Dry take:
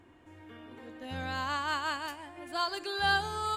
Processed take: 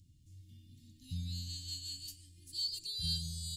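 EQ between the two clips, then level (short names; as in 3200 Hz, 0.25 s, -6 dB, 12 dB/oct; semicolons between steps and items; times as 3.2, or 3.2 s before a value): elliptic band-stop 160–4600 Hz, stop band 60 dB; +4.0 dB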